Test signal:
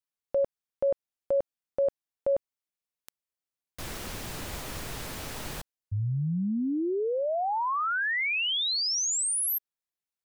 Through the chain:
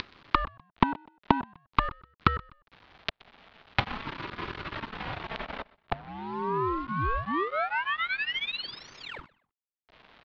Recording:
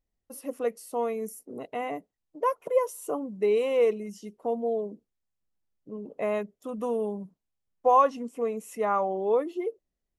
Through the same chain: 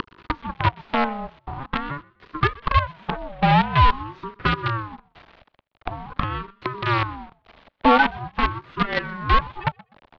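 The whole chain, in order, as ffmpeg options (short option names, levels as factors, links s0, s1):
-filter_complex "[0:a]aecho=1:1:4.3:0.95,acompressor=mode=upward:threshold=0.0447:ratio=4:attack=63:release=160:knee=2.83:detection=peak,aresample=16000,acrusher=bits=4:dc=4:mix=0:aa=0.000001,aresample=44100,volume=2.37,asoftclip=hard,volume=0.422,asplit=2[s0][s1];[s1]adynamicsmooth=sensitivity=3.5:basefreq=1500,volume=0.891[s2];[s0][s2]amix=inputs=2:normalize=0,highpass=f=210:t=q:w=0.5412,highpass=f=210:t=q:w=1.307,lowpass=f=3600:t=q:w=0.5176,lowpass=f=3600:t=q:w=0.7071,lowpass=f=3600:t=q:w=1.932,afreqshift=66,aecho=1:1:125|250:0.0668|0.0207,aeval=exprs='val(0)*sin(2*PI*500*n/s+500*0.4/0.45*sin(2*PI*0.45*n/s))':c=same,volume=0.891"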